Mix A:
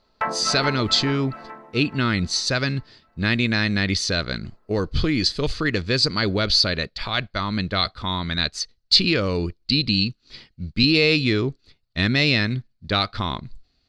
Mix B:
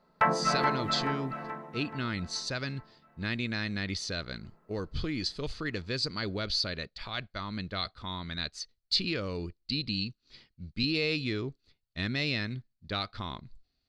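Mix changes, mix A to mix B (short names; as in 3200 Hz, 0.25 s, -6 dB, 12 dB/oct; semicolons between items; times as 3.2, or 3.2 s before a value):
speech -12.0 dB; background: add bell 160 Hz +11.5 dB 0.4 oct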